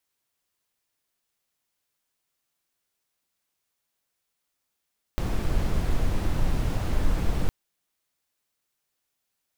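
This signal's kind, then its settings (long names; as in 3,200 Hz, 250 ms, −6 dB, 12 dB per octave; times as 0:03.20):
noise brown, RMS −22.5 dBFS 2.31 s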